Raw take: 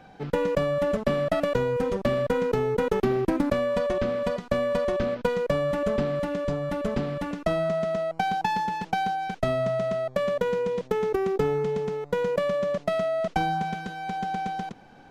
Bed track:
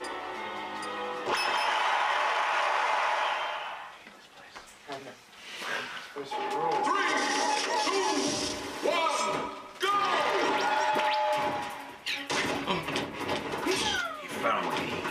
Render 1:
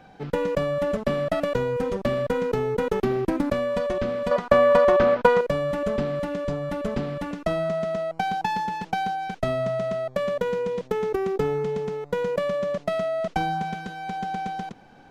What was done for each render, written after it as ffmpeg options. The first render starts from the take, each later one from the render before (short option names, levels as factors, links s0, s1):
-filter_complex "[0:a]asettb=1/sr,asplit=3[s0][s1][s2];[s0]atrim=end=4.314[s3];[s1]atrim=start=4.31:end=5.41,asetpts=PTS-STARTPTS,afade=t=in:d=0.004:c=qsin,afade=t=out:st=1.096:d=0.004:c=qsin,equalizer=f=1000:t=o:w=2.5:g=12.5[s4];[s2]atrim=start=5.406[s5];[s3][s4]acrossfade=d=0.004:c1=hsin:c2=qsin[s6];[s6][s5]acrossfade=d=0.004:c1=qsin:c2=hsin"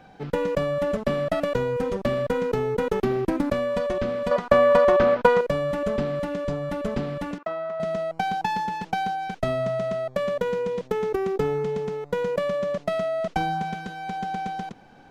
-filter_complex "[0:a]asettb=1/sr,asplit=3[s0][s1][s2];[s0]atrim=end=7.384[s3];[s1]atrim=start=7.38:end=7.8,asetpts=PTS-STARTPTS,afade=t=in:d=0.004:c=qsin,afade=t=out:st=0.416:d=0.004:c=qsin,bandpass=f=1100:t=q:w=1.2[s4];[s2]atrim=start=7.796[s5];[s3][s4]acrossfade=d=0.004:c1=hsin:c2=qsin[s6];[s6][s5]acrossfade=d=0.004:c1=qsin:c2=hsin"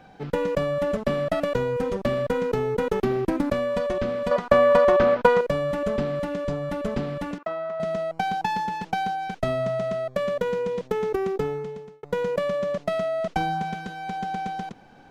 -filter_complex "[0:a]asettb=1/sr,asplit=3[s0][s1][s2];[s0]atrim=end=9.814[s3];[s1]atrim=start=9.81:end=10.43,asetpts=PTS-STARTPTS,afade=t=in:d=0.004:c=qsin,afade=t=out:st=0.616:d=0.004:c=qsin,asuperstop=centerf=850:order=4:qfactor=5.1[s4];[s2]atrim=start=10.426[s5];[s3][s4]acrossfade=d=0.004:c1=hsin:c2=qsin[s6];[s6][s5]acrossfade=d=0.004:c1=qsin:c2=hsin,asplit=2[s7][s8];[s7]atrim=end=12.03,asetpts=PTS-STARTPTS,afade=t=out:st=11.25:d=0.78[s9];[s8]atrim=start=12.03,asetpts=PTS-STARTPTS,afade=t=in:d=0.004:c=hsin[s10];[s9][s10]concat=n=2:v=0:a=1"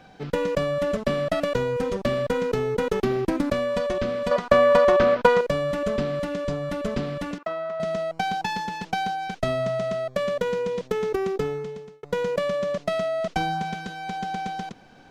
-af "equalizer=f=5200:w=0.58:g=5,bandreject=f=840:w=13"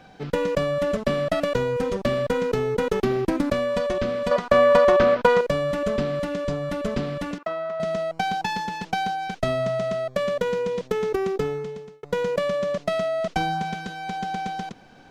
-af "volume=1.12,alimiter=limit=0.708:level=0:latency=1"